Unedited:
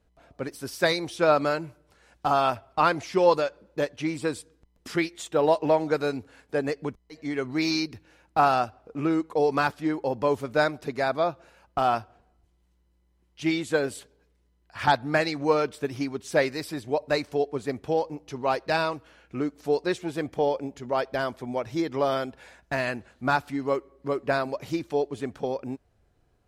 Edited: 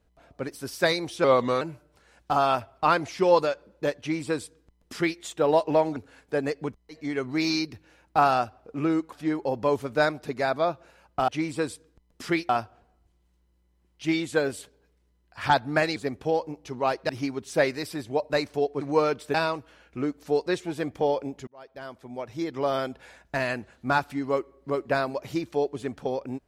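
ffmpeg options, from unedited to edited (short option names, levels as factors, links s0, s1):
-filter_complex "[0:a]asplit=12[s0][s1][s2][s3][s4][s5][s6][s7][s8][s9][s10][s11];[s0]atrim=end=1.244[s12];[s1]atrim=start=1.24:end=1.56,asetpts=PTS-STARTPTS,asetrate=37926,aresample=44100,atrim=end_sample=16409,asetpts=PTS-STARTPTS[s13];[s2]atrim=start=1.556:end=5.912[s14];[s3]atrim=start=6.168:end=9.332[s15];[s4]atrim=start=9.708:end=11.872[s16];[s5]atrim=start=3.938:end=5.152[s17];[s6]atrim=start=11.868:end=15.342[s18];[s7]atrim=start=17.588:end=18.722[s19];[s8]atrim=start=15.868:end=17.592[s20];[s9]atrim=start=15.338:end=15.872[s21];[s10]atrim=start=18.718:end=20.85,asetpts=PTS-STARTPTS,afade=t=out:st=2.128:d=0.004:c=hsin[s22];[s11]atrim=start=20.85,asetpts=PTS-STARTPTS,afade=t=in:d=1.41[s23];[s12][s13]acrossfade=d=0.004:c1=hsin:c2=hsin[s24];[s24][s14]acrossfade=d=0.004:c1=hsin:c2=hsin[s25];[s25][s15]acrossfade=d=0.004:c1=hsin:c2=hsin[s26];[s26][s16]acrossfade=d=0.004:c1=hsin:c2=hsin[s27];[s27][s17]acrossfade=d=0.004:c1=hsin:c2=hsin[s28];[s28][s18]acrossfade=d=0.004:c1=hsin:c2=hsin[s29];[s29][s19]acrossfade=d=0.004:c1=hsin:c2=hsin[s30];[s30][s20]acrossfade=d=0.004:c1=hsin:c2=hsin[s31];[s31][s21]acrossfade=d=0.004:c1=hsin:c2=hsin[s32];[s22][s23]concat=n=2:v=0:a=1[s33];[s32][s33]acrossfade=d=0.004:c1=hsin:c2=hsin"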